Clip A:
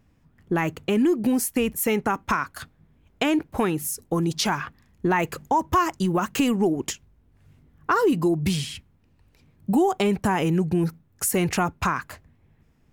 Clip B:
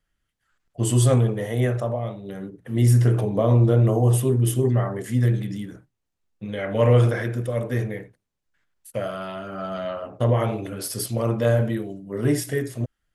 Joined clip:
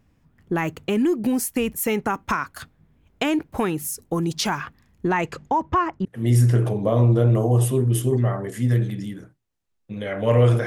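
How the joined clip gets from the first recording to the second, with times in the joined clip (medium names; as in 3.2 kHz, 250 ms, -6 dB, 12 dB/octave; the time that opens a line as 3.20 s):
clip A
5.07–6.05 s: low-pass 11 kHz -> 1.4 kHz
6.05 s: go over to clip B from 2.57 s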